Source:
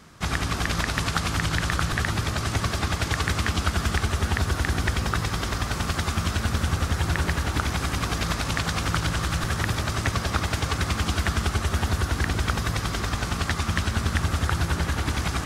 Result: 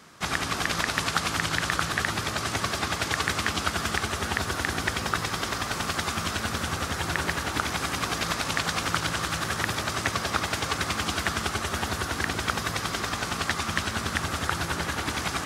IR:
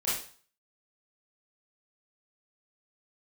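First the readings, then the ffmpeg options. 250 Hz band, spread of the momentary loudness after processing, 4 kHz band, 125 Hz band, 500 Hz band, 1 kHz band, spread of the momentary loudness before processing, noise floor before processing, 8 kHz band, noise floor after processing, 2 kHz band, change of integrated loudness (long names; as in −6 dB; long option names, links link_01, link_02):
−3.5 dB, 3 LU, +1.0 dB, −9.0 dB, −0.5 dB, +0.5 dB, 2 LU, −31 dBFS, +1.0 dB, −33 dBFS, +1.0 dB, −1.5 dB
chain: -af "highpass=frequency=310:poles=1,volume=1dB"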